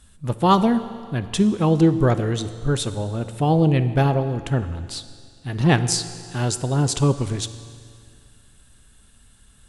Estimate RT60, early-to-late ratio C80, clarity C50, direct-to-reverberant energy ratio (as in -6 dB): 2.2 s, 13.5 dB, 12.5 dB, 11.0 dB